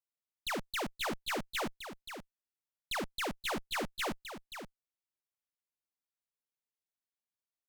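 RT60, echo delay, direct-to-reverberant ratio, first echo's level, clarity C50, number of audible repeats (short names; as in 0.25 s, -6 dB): none, 0.527 s, none, -9.5 dB, none, 1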